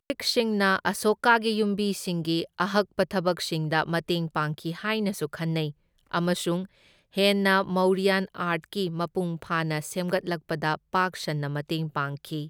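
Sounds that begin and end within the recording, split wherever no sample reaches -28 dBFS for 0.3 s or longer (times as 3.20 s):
6.14–6.62 s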